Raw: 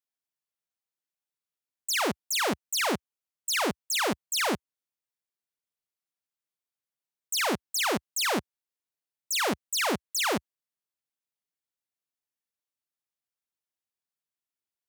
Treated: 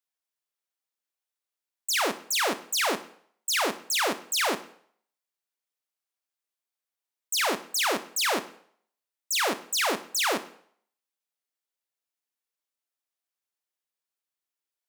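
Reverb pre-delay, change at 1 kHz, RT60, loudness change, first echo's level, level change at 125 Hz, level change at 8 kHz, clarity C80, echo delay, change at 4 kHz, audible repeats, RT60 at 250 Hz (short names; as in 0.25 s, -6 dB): 13 ms, +1.5 dB, 0.60 s, +1.5 dB, none, -9.5 dB, +2.0 dB, 18.5 dB, none, +2.0 dB, none, 0.50 s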